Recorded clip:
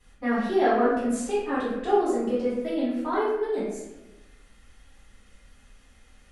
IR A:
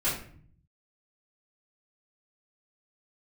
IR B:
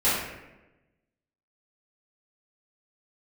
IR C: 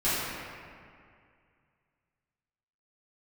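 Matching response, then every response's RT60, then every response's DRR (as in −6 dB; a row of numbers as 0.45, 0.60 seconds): B; 0.50, 1.0, 2.2 seconds; −12.5, −12.5, −14.0 decibels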